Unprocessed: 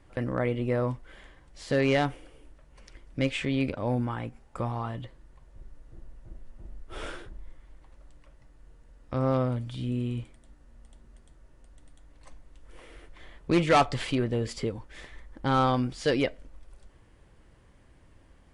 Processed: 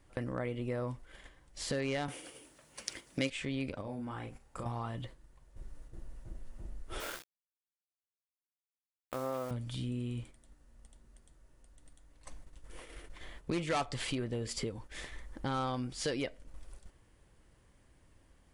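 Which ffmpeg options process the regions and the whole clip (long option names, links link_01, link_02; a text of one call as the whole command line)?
ffmpeg -i in.wav -filter_complex "[0:a]asettb=1/sr,asplit=3[link_01][link_02][link_03];[link_01]atrim=end=2.084[link_04];[link_02]atrim=start=2.08:end=3.3,asetpts=PTS-STARTPTS,afade=type=in:duration=0.004:curve=qsin,afade=type=out:start_time=1.216:duration=0.004:curve=qsin,acontrast=72,highpass=160,highshelf=frequency=2700:gain=8[link_05];[link_03]atrim=start=3.296[link_06];[link_04][link_05]acrossfade=duration=0.004:curve1=hsin:curve2=qsin[link_07];[link_07][link_06]acrossfade=duration=0.004:curve1=qsin:curve2=hsin,asettb=1/sr,asplit=3[link_08][link_09][link_10];[link_08]atrim=end=3.814[link_11];[link_09]atrim=start=3.81:end=4.66,asetpts=PTS-STARTPTS,afade=type=in:duration=0.004:curve=qsin,afade=type=out:start_time=0.846:duration=0.004:curve=qsin,acompressor=threshold=-40dB:ratio=2.5:attack=3.2:release=140:knee=1:detection=peak,asplit=2[link_12][link_13];[link_13]adelay=37,volume=-5dB[link_14];[link_12][link_14]amix=inputs=2:normalize=0,atrim=end_sample=37485[link_15];[link_10]atrim=start=4.656[link_16];[link_11][link_15]acrossfade=duration=0.004:curve1=hsin:curve2=qsin[link_17];[link_17][link_16]acrossfade=duration=0.004:curve1=qsin:curve2=hsin,asettb=1/sr,asplit=3[link_18][link_19][link_20];[link_18]atrim=end=7.004[link_21];[link_19]atrim=start=7:end=9.51,asetpts=PTS-STARTPTS,afade=type=in:duration=0.004:curve=qsin,afade=type=out:start_time=2.506:duration=0.004:curve=qsin,bass=frequency=250:gain=-15,treble=frequency=4000:gain=-12,aeval=exprs='val(0)*gte(abs(val(0)),0.00841)':channel_layout=same[link_22];[link_20]atrim=start=9.506[link_23];[link_21][link_22]acrossfade=duration=0.004:curve1=hsin:curve2=qsin[link_24];[link_24][link_23]acrossfade=duration=0.004:curve1=qsin:curve2=hsin,acompressor=threshold=-37dB:ratio=2.5,agate=range=-7dB:threshold=-48dB:ratio=16:detection=peak,highshelf=frequency=5700:gain=10.5" out.wav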